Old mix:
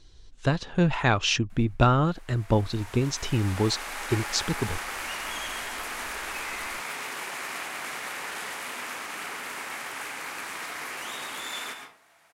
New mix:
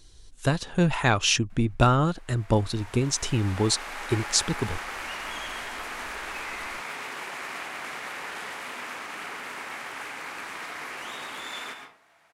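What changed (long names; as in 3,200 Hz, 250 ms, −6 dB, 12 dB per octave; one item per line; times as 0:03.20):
speech: remove high-frequency loss of the air 160 metres
master: add high-shelf EQ 6,600 Hz −10.5 dB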